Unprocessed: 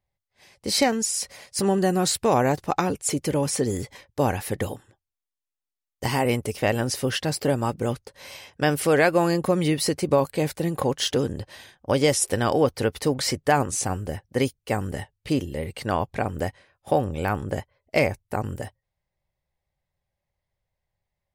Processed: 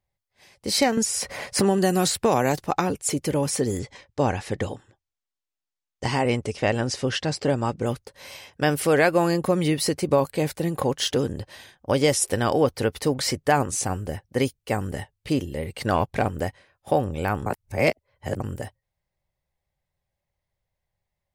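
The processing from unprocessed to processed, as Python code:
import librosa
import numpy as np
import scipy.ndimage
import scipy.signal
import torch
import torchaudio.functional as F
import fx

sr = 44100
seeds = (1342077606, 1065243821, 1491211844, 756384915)

y = fx.band_squash(x, sr, depth_pct=70, at=(0.97, 2.59))
y = fx.lowpass(y, sr, hz=7900.0, slope=24, at=(3.79, 7.86))
y = fx.leveller(y, sr, passes=1, at=(15.8, 16.29))
y = fx.edit(y, sr, fx.reverse_span(start_s=17.46, length_s=0.94), tone=tone)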